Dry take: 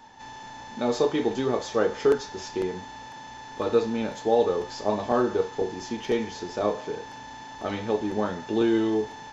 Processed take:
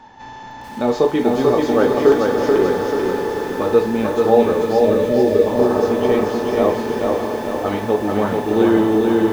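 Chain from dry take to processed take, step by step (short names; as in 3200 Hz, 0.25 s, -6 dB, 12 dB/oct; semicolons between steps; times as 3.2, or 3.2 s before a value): LPF 2200 Hz 6 dB/oct; diffused feedback echo 0.587 s, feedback 48%, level -5.5 dB; spectral delete 4.63–5.46, 640–1700 Hz; lo-fi delay 0.437 s, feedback 55%, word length 8-bit, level -3 dB; gain +7.5 dB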